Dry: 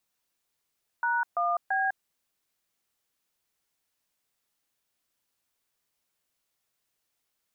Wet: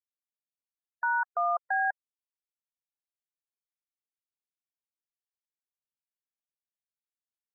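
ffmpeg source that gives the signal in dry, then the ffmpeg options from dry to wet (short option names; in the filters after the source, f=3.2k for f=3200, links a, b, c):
-f lavfi -i "aevalsrc='0.0473*clip(min(mod(t,0.337),0.202-mod(t,0.337))/0.002,0,1)*(eq(floor(t/0.337),0)*(sin(2*PI*941*mod(t,0.337))+sin(2*PI*1477*mod(t,0.337)))+eq(floor(t/0.337),1)*(sin(2*PI*697*mod(t,0.337))+sin(2*PI*1209*mod(t,0.337)))+eq(floor(t/0.337),2)*(sin(2*PI*770*mod(t,0.337))+sin(2*PI*1633*mod(t,0.337))))':d=1.011:s=44100"
-af "afftfilt=real='re*gte(hypot(re,im),0.0141)':imag='im*gte(hypot(re,im),0.0141)':win_size=1024:overlap=0.75"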